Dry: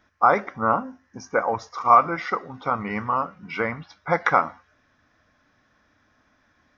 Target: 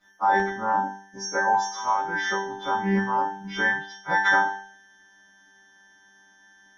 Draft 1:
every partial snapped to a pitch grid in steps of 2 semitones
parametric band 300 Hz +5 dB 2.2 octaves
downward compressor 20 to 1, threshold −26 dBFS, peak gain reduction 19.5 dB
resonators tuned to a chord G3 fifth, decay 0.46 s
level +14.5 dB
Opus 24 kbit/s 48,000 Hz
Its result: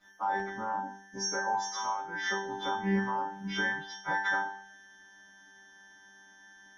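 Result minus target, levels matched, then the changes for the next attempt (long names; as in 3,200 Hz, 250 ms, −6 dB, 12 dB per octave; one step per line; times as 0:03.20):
downward compressor: peak gain reduction +11.5 dB
change: downward compressor 20 to 1, threshold −14 dBFS, peak gain reduction 8 dB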